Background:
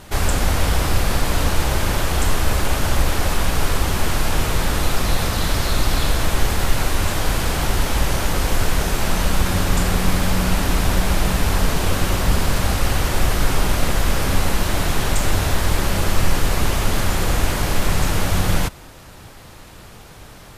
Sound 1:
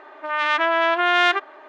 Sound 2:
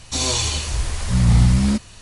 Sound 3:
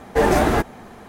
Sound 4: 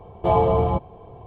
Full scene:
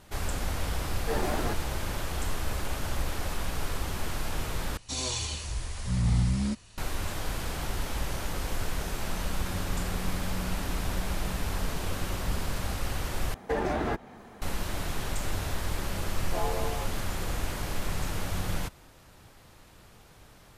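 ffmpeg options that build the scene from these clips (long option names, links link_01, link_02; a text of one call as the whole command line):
ffmpeg -i bed.wav -i cue0.wav -i cue1.wav -i cue2.wav -i cue3.wav -filter_complex "[3:a]asplit=2[link_01][link_02];[0:a]volume=-13dB[link_03];[link_02]acrossover=split=85|5600[link_04][link_05][link_06];[link_04]acompressor=threshold=-28dB:ratio=4[link_07];[link_05]acompressor=threshold=-19dB:ratio=4[link_08];[link_06]acompressor=threshold=-54dB:ratio=4[link_09];[link_07][link_08][link_09]amix=inputs=3:normalize=0[link_10];[4:a]highpass=360[link_11];[link_03]asplit=3[link_12][link_13][link_14];[link_12]atrim=end=4.774[link_15];[2:a]atrim=end=2.01,asetpts=PTS-STARTPTS,volume=-11dB[link_16];[link_13]atrim=start=6.776:end=13.344[link_17];[link_10]atrim=end=1.08,asetpts=PTS-STARTPTS,volume=-7.5dB[link_18];[link_14]atrim=start=14.416[link_19];[link_01]atrim=end=1.08,asetpts=PTS-STARTPTS,volume=-15dB,afade=type=in:duration=0.004:curve=hsin,afade=type=out:start_time=1.076:duration=0.004:curve=hsin,adelay=920[link_20];[link_11]atrim=end=1.26,asetpts=PTS-STARTPTS,volume=-14dB,afade=type=in:duration=0.004:curve=hsin,afade=type=out:start_time=1.256:duration=0.004:curve=hsin,adelay=16080[link_21];[link_15][link_16]acrossfade=duration=0.004:curve1=hsin:curve2=hsin[link_22];[link_22][link_17]acrossfade=duration=0.004:curve1=hsin:curve2=hsin[link_23];[link_23][link_18]acrossfade=duration=0.004:curve1=hsin:curve2=hsin[link_24];[link_24][link_19]acrossfade=duration=0.004:curve1=hsin:curve2=hsin[link_25];[link_25][link_20][link_21]amix=inputs=3:normalize=0" out.wav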